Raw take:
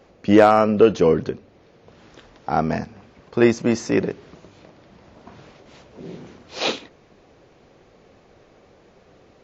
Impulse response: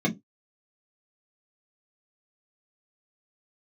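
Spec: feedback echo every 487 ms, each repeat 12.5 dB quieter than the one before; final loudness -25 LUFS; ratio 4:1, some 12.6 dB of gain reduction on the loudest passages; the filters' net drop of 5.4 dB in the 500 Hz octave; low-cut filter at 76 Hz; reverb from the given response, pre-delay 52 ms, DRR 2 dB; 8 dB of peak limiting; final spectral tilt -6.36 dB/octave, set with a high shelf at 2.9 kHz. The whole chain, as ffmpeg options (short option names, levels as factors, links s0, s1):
-filter_complex "[0:a]highpass=76,equalizer=f=500:t=o:g=-7,highshelf=f=2900:g=4.5,acompressor=threshold=0.0501:ratio=4,alimiter=limit=0.0841:level=0:latency=1,aecho=1:1:487|974|1461:0.237|0.0569|0.0137,asplit=2[s0][s1];[1:a]atrim=start_sample=2205,adelay=52[s2];[s1][s2]afir=irnorm=-1:irlink=0,volume=0.224[s3];[s0][s3]amix=inputs=2:normalize=0,volume=1.12"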